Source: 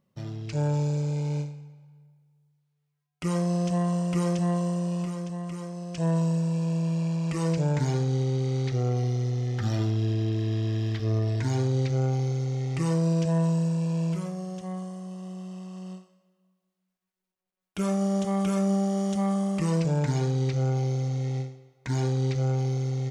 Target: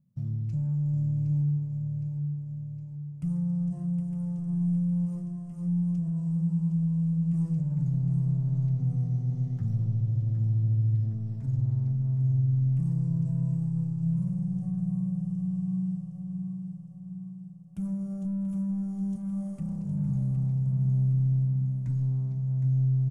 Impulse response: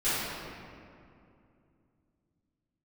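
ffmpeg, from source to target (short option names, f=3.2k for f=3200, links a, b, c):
-filter_complex "[0:a]equalizer=f=180:t=o:w=1.4:g=6.5,alimiter=limit=-16dB:level=0:latency=1:release=153,asplit=2[a][b];[b]highpass=f=78:w=0.5412,highpass=f=78:w=1.3066[c];[1:a]atrim=start_sample=2205[d];[c][d]afir=irnorm=-1:irlink=0,volume=-16dB[e];[a][e]amix=inputs=2:normalize=0,asoftclip=type=tanh:threshold=-21.5dB,acompressor=threshold=-27dB:ratio=6,firequalizer=gain_entry='entry(160,0);entry(390,-25);entry(570,-19);entry(1700,-25);entry(3800,-27);entry(9900,-11)':delay=0.05:min_phase=1,aecho=1:1:763|1526|2289|3052|3815|4578|5341:0.447|0.246|0.135|0.0743|0.0409|0.0225|0.0124,volume=1.5dB"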